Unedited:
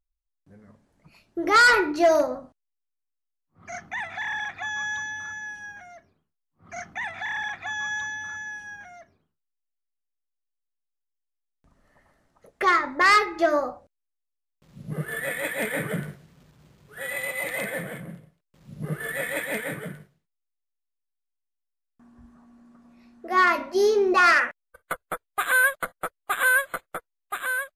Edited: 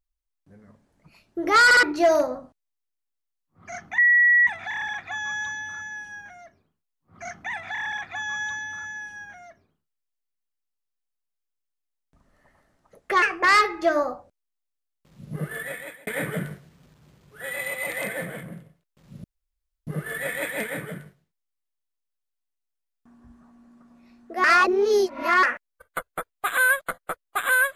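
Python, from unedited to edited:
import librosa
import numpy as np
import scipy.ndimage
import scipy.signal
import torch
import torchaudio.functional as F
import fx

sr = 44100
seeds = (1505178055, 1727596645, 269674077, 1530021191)

y = fx.edit(x, sr, fx.stutter_over(start_s=1.65, slice_s=0.06, count=3),
    fx.insert_tone(at_s=3.98, length_s=0.49, hz=1930.0, db=-13.5),
    fx.speed_span(start_s=12.73, length_s=0.27, speed=1.29),
    fx.fade_out_span(start_s=15.04, length_s=0.6),
    fx.insert_room_tone(at_s=18.81, length_s=0.63),
    fx.reverse_span(start_s=23.38, length_s=0.99), tone=tone)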